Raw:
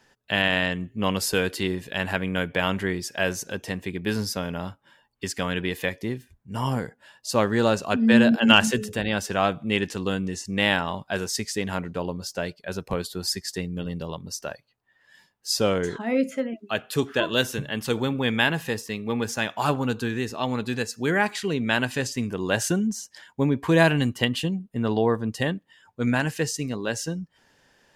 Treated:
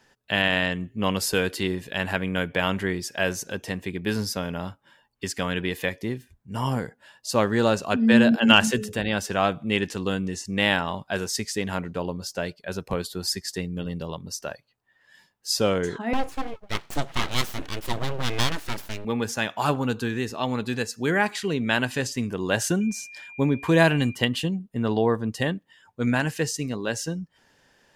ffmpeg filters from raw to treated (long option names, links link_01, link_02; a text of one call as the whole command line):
ffmpeg -i in.wav -filter_complex "[0:a]asettb=1/sr,asplit=3[link_01][link_02][link_03];[link_01]atrim=end=16.134[link_04];[link_02]atrim=start=16.13:end=19.05,asetpts=PTS-STARTPTS,afade=type=in:duration=0.004:curve=qsin,afade=type=out:start_time=2.916:duration=0.004:curve=qsin,aeval=exprs='abs(val(0))':channel_layout=same[link_05];[link_03]atrim=start=19.046[link_06];[link_04][link_05]acrossfade=duration=0.004:curve1=hsin:curve2=qsin[link_07];[link_07][link_06]acrossfade=duration=0.004:curve1=qsin:curve2=hsin,asettb=1/sr,asplit=3[link_08][link_09][link_10];[link_08]atrim=end=22.814[link_11];[link_09]atrim=start=22.81:end=24.15,asetpts=PTS-STARTPTS,afade=type=in:duration=0.004:curve=qsin,afade=type=out:start_time=1.336:duration=0.004:curve=qsin,aeval=exprs='val(0)+0.00891*sin(2*PI*2400*n/s)':channel_layout=same[link_12];[link_10]atrim=start=24.146[link_13];[link_11][link_12]acrossfade=duration=0.004:curve1=hsin:curve2=qsin[link_14];[link_14][link_13]acrossfade=duration=0.004:curve1=qsin:curve2=hsin" out.wav